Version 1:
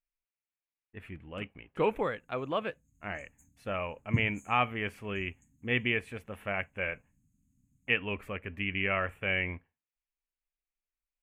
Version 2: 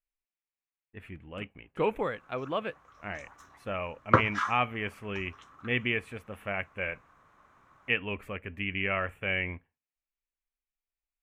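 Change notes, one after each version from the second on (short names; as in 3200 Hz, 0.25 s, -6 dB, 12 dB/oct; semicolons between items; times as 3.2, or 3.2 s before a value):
background: remove brick-wall FIR band-stop 290–6300 Hz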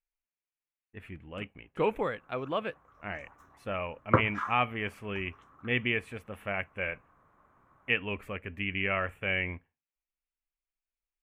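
background: add bell 4800 Hz -15 dB 2.4 oct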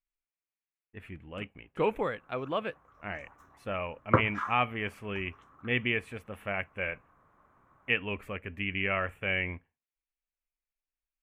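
none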